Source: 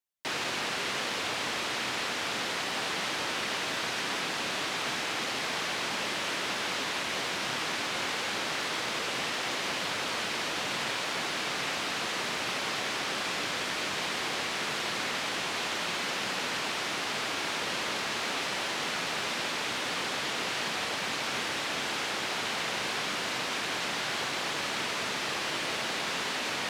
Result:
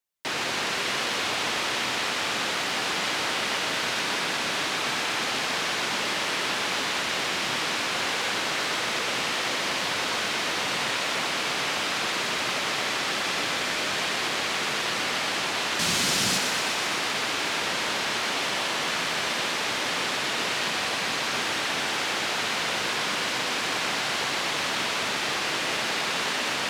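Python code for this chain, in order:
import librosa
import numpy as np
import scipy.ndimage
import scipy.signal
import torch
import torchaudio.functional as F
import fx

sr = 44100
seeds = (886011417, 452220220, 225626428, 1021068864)

p1 = fx.bass_treble(x, sr, bass_db=12, treble_db=11, at=(15.79, 16.38))
p2 = p1 + fx.echo_thinned(p1, sr, ms=122, feedback_pct=77, hz=420.0, wet_db=-7.0, dry=0)
y = p2 * librosa.db_to_amplitude(3.5)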